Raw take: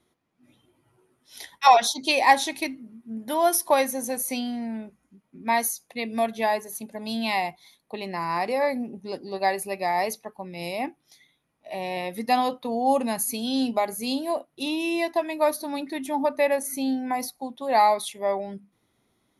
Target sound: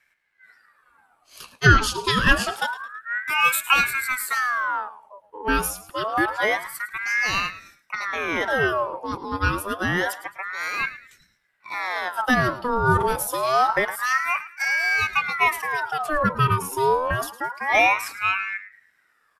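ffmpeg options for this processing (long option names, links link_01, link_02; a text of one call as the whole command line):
ffmpeg -i in.wav -filter_complex "[0:a]equalizer=frequency=170:width=0.49:gain=9.5,atempo=1,asplit=4[link_01][link_02][link_03][link_04];[link_02]adelay=108,afreqshift=-93,volume=-15.5dB[link_05];[link_03]adelay=216,afreqshift=-186,volume=-24.9dB[link_06];[link_04]adelay=324,afreqshift=-279,volume=-34.2dB[link_07];[link_01][link_05][link_06][link_07]amix=inputs=4:normalize=0,acrossover=split=220[link_08][link_09];[link_08]aeval=exprs='clip(val(0),-1,0.0126)':channel_layout=same[link_10];[link_10][link_09]amix=inputs=2:normalize=0,aeval=exprs='val(0)*sin(2*PI*1300*n/s+1300*0.5/0.27*sin(2*PI*0.27*n/s))':channel_layout=same,volume=2dB" out.wav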